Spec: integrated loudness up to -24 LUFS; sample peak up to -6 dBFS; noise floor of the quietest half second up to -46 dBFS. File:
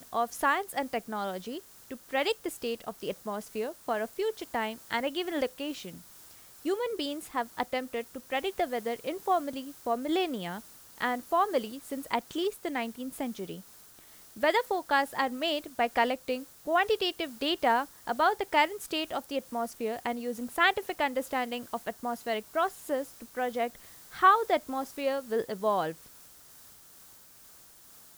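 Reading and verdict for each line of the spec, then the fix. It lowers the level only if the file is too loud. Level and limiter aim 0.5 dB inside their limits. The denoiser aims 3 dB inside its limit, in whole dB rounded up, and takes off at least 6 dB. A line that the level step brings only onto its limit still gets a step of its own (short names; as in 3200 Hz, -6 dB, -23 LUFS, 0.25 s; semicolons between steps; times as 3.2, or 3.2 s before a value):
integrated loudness -31.0 LUFS: OK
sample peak -11.0 dBFS: OK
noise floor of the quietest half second -54 dBFS: OK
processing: none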